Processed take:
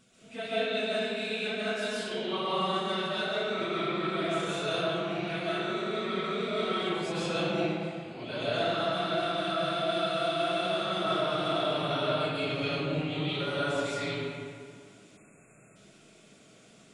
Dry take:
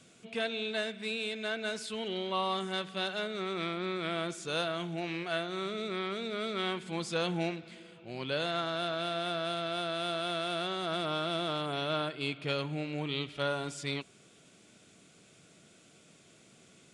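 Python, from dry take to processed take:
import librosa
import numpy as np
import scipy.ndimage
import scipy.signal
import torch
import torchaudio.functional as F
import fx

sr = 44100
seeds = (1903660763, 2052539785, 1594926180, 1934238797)

y = fx.phase_scramble(x, sr, seeds[0], window_ms=50)
y = fx.rev_freeverb(y, sr, rt60_s=2.1, hf_ratio=0.6, predelay_ms=95, drr_db=-8.5)
y = fx.spec_erase(y, sr, start_s=15.17, length_s=0.59, low_hz=2700.0, high_hz=6700.0)
y = F.gain(torch.from_numpy(y), -5.5).numpy()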